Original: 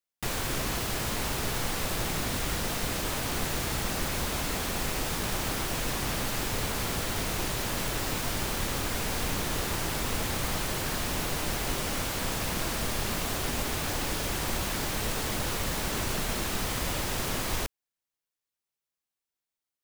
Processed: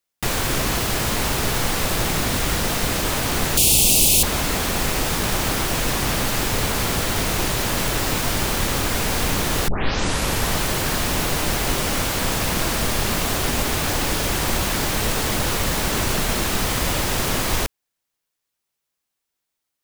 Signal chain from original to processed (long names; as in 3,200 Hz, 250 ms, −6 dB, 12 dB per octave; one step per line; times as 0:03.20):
0:03.57–0:04.23: drawn EQ curve 410 Hz 0 dB, 850 Hz −5 dB, 1,700 Hz −26 dB, 2,600 Hz +7 dB, 5,500 Hz +9 dB, 9,800 Hz +15 dB, 16,000 Hz +11 dB
0:09.68: tape start 0.90 s
level +9 dB